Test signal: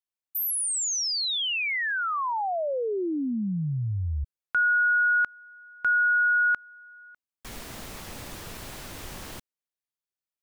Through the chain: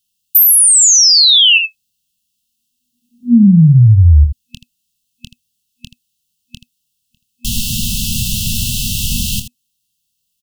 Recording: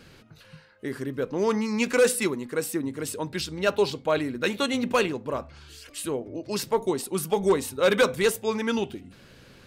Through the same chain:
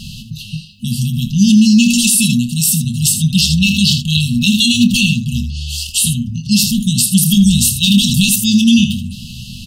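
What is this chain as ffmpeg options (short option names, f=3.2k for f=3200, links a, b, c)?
-af "afftfilt=real='re*(1-between(b*sr/4096,240,2600))':imag='im*(1-between(b*sr/4096,240,2600))':win_size=4096:overlap=0.75,aecho=1:1:25|80:0.316|0.266,alimiter=level_in=24.5dB:limit=-1dB:release=50:level=0:latency=1,volume=-1dB"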